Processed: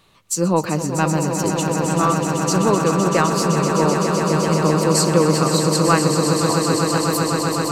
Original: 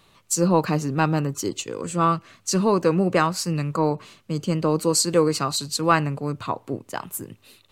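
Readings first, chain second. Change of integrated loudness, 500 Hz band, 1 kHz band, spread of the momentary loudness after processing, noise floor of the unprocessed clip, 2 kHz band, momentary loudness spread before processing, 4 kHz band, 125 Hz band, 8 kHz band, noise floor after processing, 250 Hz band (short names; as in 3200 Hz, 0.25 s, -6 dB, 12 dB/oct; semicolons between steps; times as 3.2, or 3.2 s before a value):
+5.0 dB, +5.5 dB, +5.0 dB, 4 LU, -59 dBFS, +5.0 dB, 12 LU, +5.0 dB, +6.0 dB, +5.5 dB, -26 dBFS, +6.0 dB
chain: swelling echo 0.128 s, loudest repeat 8, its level -9 dB; gain +1 dB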